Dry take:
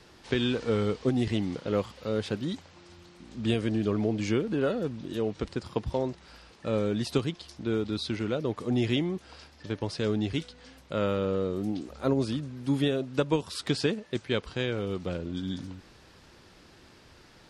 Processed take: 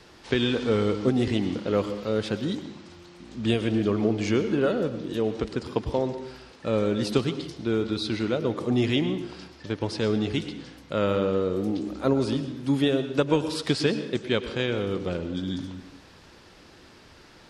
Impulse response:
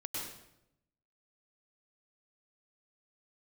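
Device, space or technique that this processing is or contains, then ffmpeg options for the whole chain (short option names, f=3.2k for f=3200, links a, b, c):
filtered reverb send: -filter_complex "[0:a]asplit=2[a][b];[b]highpass=160,lowpass=7.9k[c];[1:a]atrim=start_sample=2205[d];[c][d]afir=irnorm=-1:irlink=0,volume=-8.5dB[e];[a][e]amix=inputs=2:normalize=0,volume=2dB"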